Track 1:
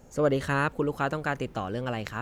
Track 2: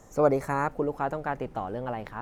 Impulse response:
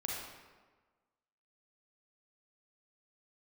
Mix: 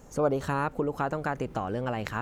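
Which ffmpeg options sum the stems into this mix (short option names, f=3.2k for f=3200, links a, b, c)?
-filter_complex "[0:a]volume=1dB[a];[1:a]volume=-4.5dB,asplit=2[b][c];[c]apad=whole_len=97665[d];[a][d]sidechaincompress=threshold=-41dB:ratio=8:attack=43:release=132[e];[e][b]amix=inputs=2:normalize=0"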